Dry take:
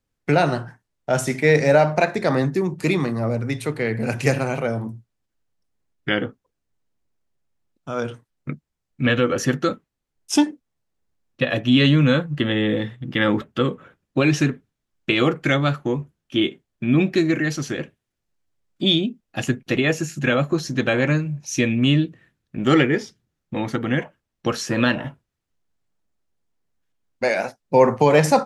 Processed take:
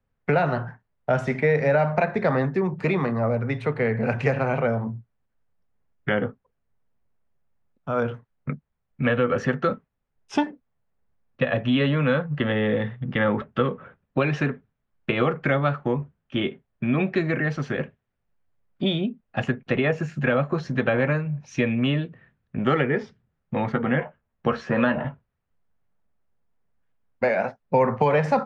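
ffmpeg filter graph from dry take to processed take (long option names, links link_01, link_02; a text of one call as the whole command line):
ffmpeg -i in.wav -filter_complex "[0:a]asettb=1/sr,asplit=3[link_01][link_02][link_03];[link_01]atrim=end=23.724[link_04];[link_02]atrim=start=23.72:end=25.04,asetpts=PTS-STARTPTS,afade=type=in:duration=0.004:curve=qsin,afade=type=out:start_time=1.316:duration=0.004:curve=qsin,aemphasis=mode=reproduction:type=50fm,asplit=2[link_05][link_06];[link_06]adelay=13,volume=-7.5dB[link_07];[link_05][link_07]amix=inputs=2:normalize=0,atrim=end_sample=58212[link_08];[link_03]atrim=start=25.036[link_09];[link_04][link_08]acrossfade=duration=0.004:curve1=hsin:curve2=qsin[link_10];[link_10][link_09]acrossfade=duration=0.004:curve1=qsin:curve2=hsin,lowpass=1900,equalizer=frequency=320:width=5.1:gain=-13,acrossover=split=320|1200[link_11][link_12][link_13];[link_11]acompressor=threshold=-29dB:ratio=4[link_14];[link_12]acompressor=threshold=-25dB:ratio=4[link_15];[link_13]acompressor=threshold=-31dB:ratio=4[link_16];[link_14][link_15][link_16]amix=inputs=3:normalize=0,volume=3.5dB" out.wav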